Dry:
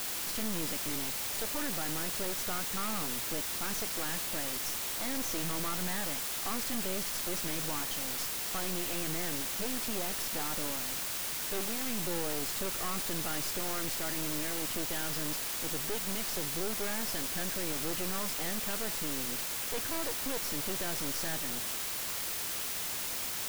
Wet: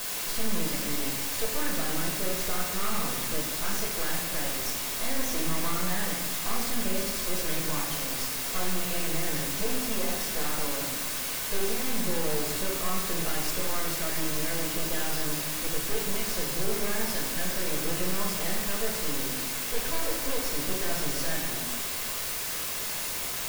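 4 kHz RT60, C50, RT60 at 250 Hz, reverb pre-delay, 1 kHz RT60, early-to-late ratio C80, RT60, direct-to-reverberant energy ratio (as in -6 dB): 0.75 s, 3.0 dB, 1.5 s, 4 ms, 1.1 s, 5.5 dB, 1.1 s, -2.0 dB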